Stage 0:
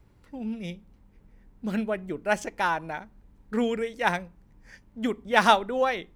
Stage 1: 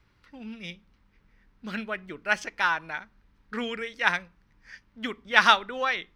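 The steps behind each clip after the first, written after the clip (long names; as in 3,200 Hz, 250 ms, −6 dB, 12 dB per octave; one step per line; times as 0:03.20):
flat-topped bell 2,500 Hz +12 dB 2.7 octaves
notch filter 7,200 Hz, Q 21
level −7.5 dB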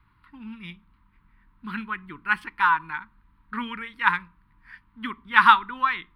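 drawn EQ curve 150 Hz 0 dB, 320 Hz −3 dB, 650 Hz −30 dB, 960 Hz +8 dB, 1,600 Hz −1 dB, 4,200 Hz −8 dB, 6,400 Hz −29 dB, 9,200 Hz −4 dB
level +2.5 dB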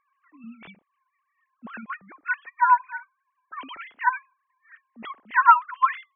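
three sine waves on the formant tracks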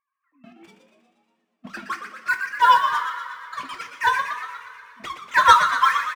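leveller curve on the samples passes 3
on a send: echo with shifted repeats 119 ms, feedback 58%, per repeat +100 Hz, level −8.5 dB
on the sum: coupled-rooms reverb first 0.22 s, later 2.7 s, from −18 dB, DRR 4 dB
level −6 dB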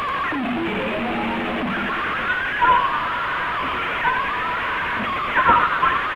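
linear delta modulator 16 kbit/s, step −16.5 dBFS
slack as between gear wheels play −43.5 dBFS
single-tap delay 87 ms −9 dB
level −1 dB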